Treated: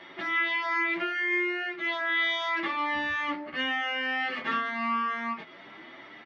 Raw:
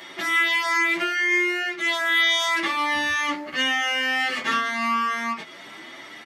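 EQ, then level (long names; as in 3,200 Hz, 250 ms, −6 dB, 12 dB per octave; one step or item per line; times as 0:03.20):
high-frequency loss of the air 300 metres
−3.5 dB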